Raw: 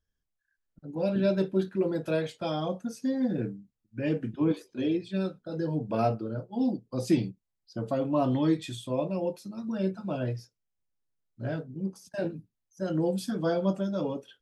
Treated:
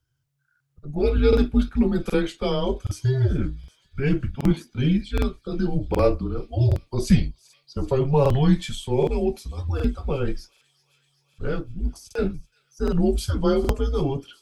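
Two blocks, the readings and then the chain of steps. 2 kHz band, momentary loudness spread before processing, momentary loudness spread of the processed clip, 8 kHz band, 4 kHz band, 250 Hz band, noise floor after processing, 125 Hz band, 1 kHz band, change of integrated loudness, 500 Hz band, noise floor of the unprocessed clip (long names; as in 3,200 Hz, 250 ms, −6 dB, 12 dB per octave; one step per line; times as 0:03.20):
+6.0 dB, 10 LU, 12 LU, +7.5 dB, +7.5 dB, +4.5 dB, −69 dBFS, +10.5 dB, +3.5 dB, +6.5 dB, +6.0 dB, −83 dBFS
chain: frequency shifter −140 Hz
delay with a high-pass on its return 383 ms, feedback 75%, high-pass 2,700 Hz, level −20.5 dB
regular buffer underruns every 0.77 s, samples 2,048, repeat, from 0:00.51
level +7.5 dB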